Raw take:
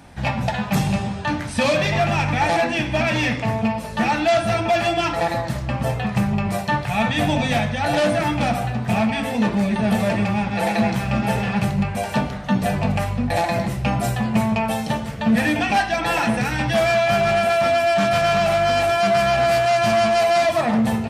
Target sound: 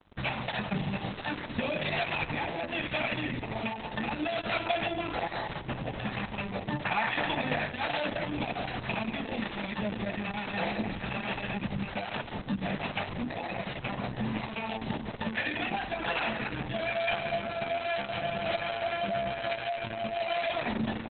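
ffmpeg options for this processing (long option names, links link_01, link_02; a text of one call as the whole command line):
ffmpeg -i in.wav -filter_complex "[0:a]asettb=1/sr,asplit=3[link_01][link_02][link_03];[link_01]atrim=end=6.854[link_04];[link_02]atrim=start=6.85:end=7.72,asetpts=PTS-STARTPTS,afade=type=in:duration=0.004:curve=qsin,afade=type=out:start_time=0.866:duration=0.004:curve=qsin,equalizer=frequency=1400:width_type=o:width=2.4:gain=13[link_05];[link_03]atrim=start=7.716[link_06];[link_04][link_05]acrossfade=duration=0.004:curve1=hsin:curve2=qsin[link_07];[link_07][link_06]acrossfade=duration=0.004:curve1=qsin:curve2=hsin,acrossover=split=110|3400[link_08][link_09][link_10];[link_08]acompressor=threshold=-41dB:ratio=8[link_11];[link_10]alimiter=level_in=5dB:limit=-24dB:level=0:latency=1:release=457,volume=-5dB[link_12];[link_11][link_09][link_12]amix=inputs=3:normalize=0,acrossover=split=900|2000[link_13][link_14][link_15];[link_13]acompressor=threshold=-29dB:ratio=4[link_16];[link_14]acompressor=threshold=-39dB:ratio=4[link_17];[link_15]acompressor=threshold=-30dB:ratio=4[link_18];[link_16][link_17][link_18]amix=inputs=3:normalize=0,acrusher=bits=5:mix=0:aa=0.5,acrossover=split=580[link_19][link_20];[link_19]aeval=exprs='val(0)*(1-0.5/2+0.5/2*cos(2*PI*1.2*n/s))':channel_layout=same[link_21];[link_20]aeval=exprs='val(0)*(1-0.5/2-0.5/2*cos(2*PI*1.2*n/s))':channel_layout=same[link_22];[link_21][link_22]amix=inputs=2:normalize=0,asplit=2[link_23][link_24];[link_24]adelay=179,lowpass=frequency=1200:poles=1,volume=-13.5dB,asplit=2[link_25][link_26];[link_26]adelay=179,lowpass=frequency=1200:poles=1,volume=0.29,asplit=2[link_27][link_28];[link_28]adelay=179,lowpass=frequency=1200:poles=1,volume=0.29[link_29];[link_25][link_27][link_29]amix=inputs=3:normalize=0[link_30];[link_23][link_30]amix=inputs=2:normalize=0,aresample=11025,aresample=44100,volume=-1dB" -ar 48000 -c:a libopus -b:a 6k out.opus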